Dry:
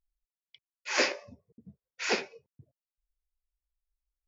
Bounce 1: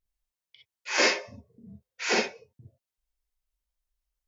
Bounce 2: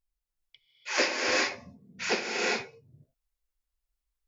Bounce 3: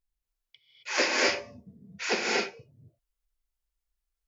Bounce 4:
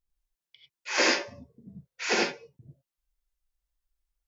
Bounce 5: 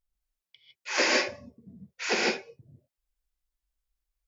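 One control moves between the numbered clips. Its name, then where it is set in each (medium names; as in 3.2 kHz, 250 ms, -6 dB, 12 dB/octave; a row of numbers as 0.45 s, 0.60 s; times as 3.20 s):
gated-style reverb, gate: 80 ms, 440 ms, 290 ms, 120 ms, 180 ms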